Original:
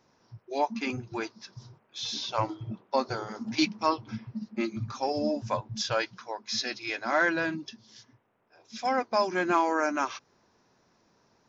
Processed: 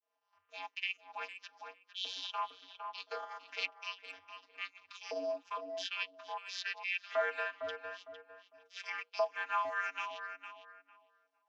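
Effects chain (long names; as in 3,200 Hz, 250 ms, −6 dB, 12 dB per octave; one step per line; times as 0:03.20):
downward expander −53 dBFS
transient designer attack −6 dB, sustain −10 dB
auto-filter high-pass saw up 0.98 Hz 550–3,300 Hz
low-shelf EQ 400 Hz −11 dB
channel vocoder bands 32, square 93.1 Hz
parametric band 2,900 Hz +12 dB 0.63 octaves
mains-hum notches 60/120/180/240/300/360/420/480 Hz
on a send: tape delay 455 ms, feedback 22%, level −6 dB, low-pass 1,100 Hz
on the sum: downward compressor 1.5 to 1, threshold −55 dBFS, peak gain reduction 13 dB
level +3 dB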